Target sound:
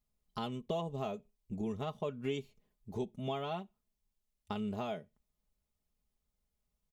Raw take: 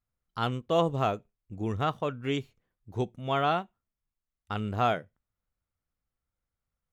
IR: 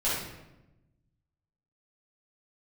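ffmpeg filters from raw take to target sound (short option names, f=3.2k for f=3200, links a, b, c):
-af "acompressor=threshold=-36dB:ratio=6,equalizer=f=1.5k:t=o:w=0.85:g=-11,aecho=1:1:4.8:0.64,volume=2dB"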